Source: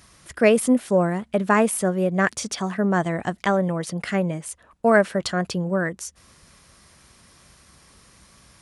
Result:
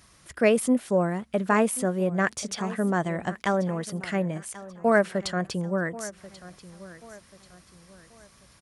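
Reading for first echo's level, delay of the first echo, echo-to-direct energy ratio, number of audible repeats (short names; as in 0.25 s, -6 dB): -17.5 dB, 1.086 s, -17.0 dB, 3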